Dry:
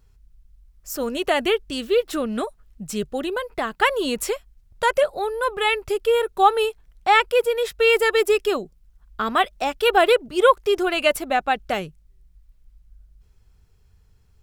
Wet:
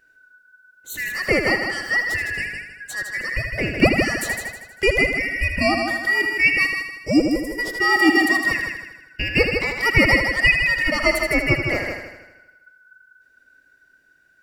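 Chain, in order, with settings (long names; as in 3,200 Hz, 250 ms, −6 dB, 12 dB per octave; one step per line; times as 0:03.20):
band-splitting scrambler in four parts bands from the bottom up 2143
gain on a spectral selection 0:06.67–0:07.59, 630–4,900 Hz −18 dB
low shelf with overshoot 760 Hz +9 dB, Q 1.5
on a send: echo machine with several playback heads 79 ms, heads first and second, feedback 44%, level −7.5 dB
on the sum: level −1.5 dB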